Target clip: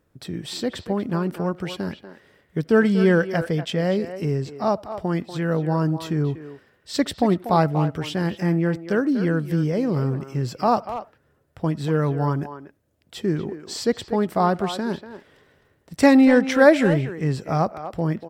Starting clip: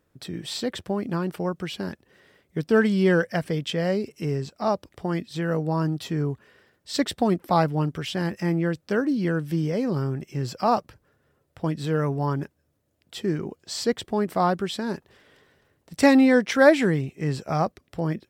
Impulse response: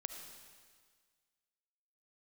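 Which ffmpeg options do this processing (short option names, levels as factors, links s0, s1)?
-filter_complex "[0:a]lowshelf=f=140:g=3,asplit=2[s0][s1];[s1]adelay=240,highpass=300,lowpass=3400,asoftclip=type=hard:threshold=0.224,volume=0.316[s2];[s0][s2]amix=inputs=2:normalize=0,asplit=2[s3][s4];[1:a]atrim=start_sample=2205,atrim=end_sample=4410,lowpass=2400[s5];[s4][s5]afir=irnorm=-1:irlink=0,volume=0.376[s6];[s3][s6]amix=inputs=2:normalize=0"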